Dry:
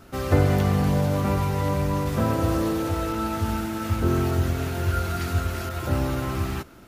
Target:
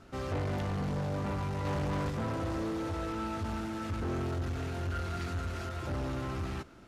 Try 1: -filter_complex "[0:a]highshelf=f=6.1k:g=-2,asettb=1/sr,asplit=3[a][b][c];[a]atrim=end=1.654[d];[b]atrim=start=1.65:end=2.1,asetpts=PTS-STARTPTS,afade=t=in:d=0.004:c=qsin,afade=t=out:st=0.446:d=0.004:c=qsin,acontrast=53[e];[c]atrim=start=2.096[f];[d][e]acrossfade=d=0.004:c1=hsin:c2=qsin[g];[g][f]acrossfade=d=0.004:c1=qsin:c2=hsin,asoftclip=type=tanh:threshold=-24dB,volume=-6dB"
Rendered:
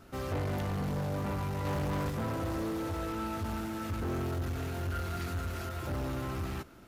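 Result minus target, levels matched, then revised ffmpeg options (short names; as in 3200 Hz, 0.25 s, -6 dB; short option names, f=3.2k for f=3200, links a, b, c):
8000 Hz band +2.5 dB
-filter_complex "[0:a]lowpass=7.9k,highshelf=f=6.1k:g=-2,asettb=1/sr,asplit=3[a][b][c];[a]atrim=end=1.654[d];[b]atrim=start=1.65:end=2.1,asetpts=PTS-STARTPTS,afade=t=in:d=0.004:c=qsin,afade=t=out:st=0.446:d=0.004:c=qsin,acontrast=53[e];[c]atrim=start=2.096[f];[d][e]acrossfade=d=0.004:c1=hsin:c2=qsin[g];[g][f]acrossfade=d=0.004:c1=qsin:c2=hsin,asoftclip=type=tanh:threshold=-24dB,volume=-6dB"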